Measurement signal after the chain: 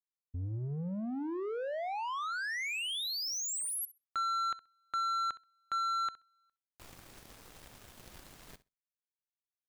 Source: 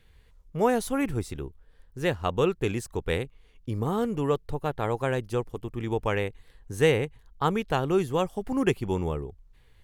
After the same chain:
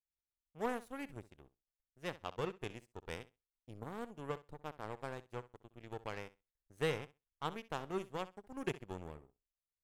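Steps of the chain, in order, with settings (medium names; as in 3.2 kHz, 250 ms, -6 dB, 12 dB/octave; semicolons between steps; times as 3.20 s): power-law waveshaper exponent 2; flutter echo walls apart 11.1 m, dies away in 0.22 s; saturation -18 dBFS; trim -5 dB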